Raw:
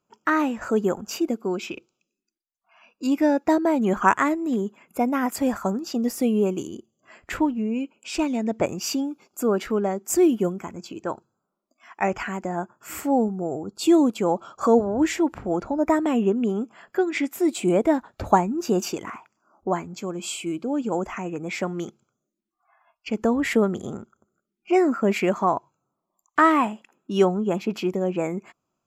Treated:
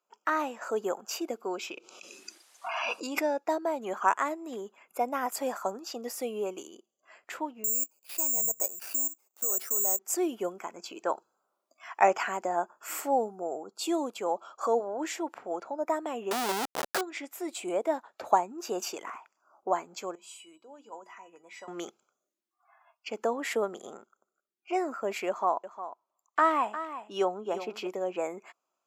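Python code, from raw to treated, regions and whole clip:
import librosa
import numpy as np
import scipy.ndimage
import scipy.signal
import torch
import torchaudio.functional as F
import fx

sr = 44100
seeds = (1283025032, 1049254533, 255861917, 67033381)

y = fx.chain(x, sr, fx.lowpass(hz=11000.0, slope=24),
    fx.pre_swell(db_per_s=26.0), at=(1.71, 3.39))
y = fx.chain(y, sr, fx.high_shelf(hz=2400.0, db=-10.5),
    fx.level_steps(step_db=14),
    fx.resample_bad(factor=6, down='none', up='zero_stuff'), at=(7.64, 9.99))
y = fx.chain(y, sr, fx.leveller(passes=5),
    fx.schmitt(flips_db=-23.0), at=(16.31, 17.01))
y = fx.chain(y, sr, fx.hum_notches(base_hz=60, count=7),
    fx.comb_fb(f0_hz=980.0, decay_s=0.19, harmonics='all', damping=0.0, mix_pct=90), at=(20.15, 21.68))
y = fx.chain(y, sr, fx.high_shelf(hz=6700.0, db=-7.0),
    fx.echo_single(ms=355, db=-12.5), at=(25.28, 27.87))
y = fx.rider(y, sr, range_db=10, speed_s=2.0)
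y = scipy.signal.sosfilt(scipy.signal.cheby1(2, 1.0, 610.0, 'highpass', fs=sr, output='sos'), y)
y = fx.dynamic_eq(y, sr, hz=2000.0, q=1.1, threshold_db=-38.0, ratio=4.0, max_db=-5)
y = F.gain(torch.from_numpy(y), -4.5).numpy()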